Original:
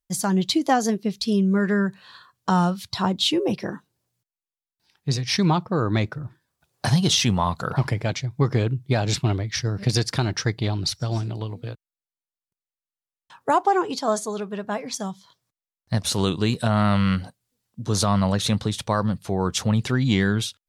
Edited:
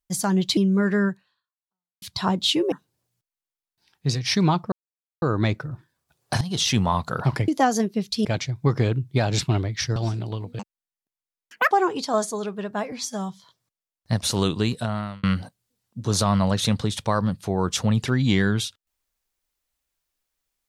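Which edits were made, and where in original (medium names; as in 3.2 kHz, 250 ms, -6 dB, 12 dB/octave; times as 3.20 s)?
0.57–1.34 s: move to 8.00 s
1.85–2.79 s: fade out exponential
3.49–3.74 s: delete
5.74 s: insert silence 0.50 s
6.93–7.28 s: fade in, from -15.5 dB
9.71–11.05 s: delete
11.68–13.65 s: speed 176%
14.86–15.11 s: stretch 1.5×
16.38–17.05 s: fade out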